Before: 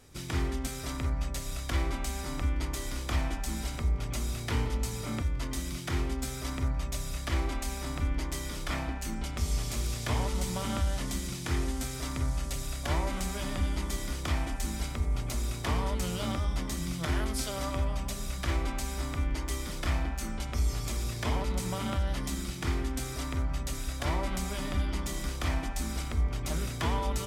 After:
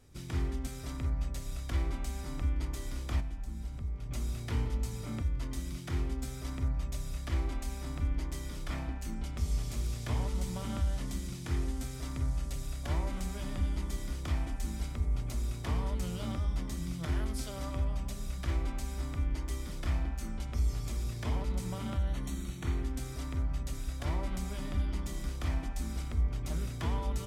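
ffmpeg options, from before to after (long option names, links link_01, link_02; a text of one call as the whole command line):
ffmpeg -i in.wav -filter_complex "[0:a]asettb=1/sr,asplit=3[link_01][link_02][link_03];[link_01]atrim=end=3.204[link_04];[link_02]atrim=start=3.2:end=4.11,asetpts=PTS-STARTPTS,afade=type=in:duration=0.004:curve=qsin,afade=type=out:start_time=0.906:duration=0.004:curve=qsin,acrossover=split=200|1600[link_05][link_06][link_07];[link_05]acompressor=threshold=-33dB:ratio=4[link_08];[link_06]acompressor=threshold=-50dB:ratio=4[link_09];[link_07]acompressor=threshold=-54dB:ratio=4[link_10];[link_08][link_09][link_10]amix=inputs=3:normalize=0[link_11];[link_03]atrim=start=4.106[link_12];[link_04][link_11]acrossfade=duration=0.004:curve1=hsin:curve2=qsin[link_13];[link_13][link_12]acrossfade=duration=0.004:curve1=qsin:curve2=hsin,asettb=1/sr,asplit=3[link_14][link_15][link_16];[link_14]atrim=end=21.974[link_17];[link_15]atrim=start=21.97:end=22.83,asetpts=PTS-STARTPTS,afade=type=in:duration=0.004:curve=qsin,afade=type=out:start_time=0.856:duration=0.004:curve=qsin,asuperstop=centerf=5000:order=12:qfactor=6.3[link_18];[link_16]atrim=start=22.826[link_19];[link_17][link_18]acrossfade=duration=0.004:curve1=hsin:curve2=qsin[link_20];[link_20][link_19]acrossfade=duration=0.004:curve1=qsin:curve2=hsin,lowshelf=frequency=310:gain=7.5,volume=-8.5dB" out.wav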